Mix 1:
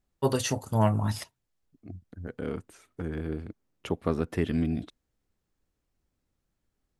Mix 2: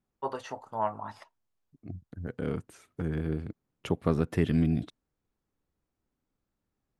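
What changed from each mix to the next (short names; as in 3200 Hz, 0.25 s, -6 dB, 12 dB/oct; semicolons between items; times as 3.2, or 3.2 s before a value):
first voice: add band-pass 960 Hz, Q 1.6; second voice: add bell 140 Hz +8 dB 0.51 oct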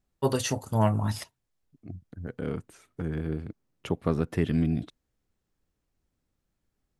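first voice: remove band-pass 960 Hz, Q 1.6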